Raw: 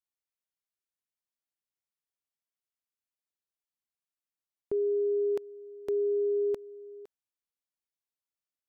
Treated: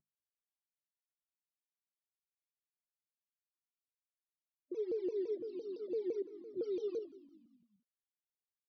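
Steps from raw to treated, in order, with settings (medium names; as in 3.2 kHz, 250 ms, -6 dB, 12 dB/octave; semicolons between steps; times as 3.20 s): CVSD coder 32 kbps; high-pass 130 Hz 24 dB/octave; peaking EQ 270 Hz -14 dB 0.38 oct; hum notches 50/100/150/200/250/300 Hz; 6.22–6.99 s: compressor with a negative ratio -41 dBFS, ratio -0.5; peak limiter -37.5 dBFS, peak gain reduction 12 dB; loudest bins only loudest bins 16; phase shifter stages 12, 3.9 Hz, lowest notch 250–1000 Hz; on a send: frequency-shifting echo 193 ms, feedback 49%, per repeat -49 Hz, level -18 dB; on the sum: vibrato with a chosen wave saw down 5.9 Hz, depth 250 cents; trim +9.5 dB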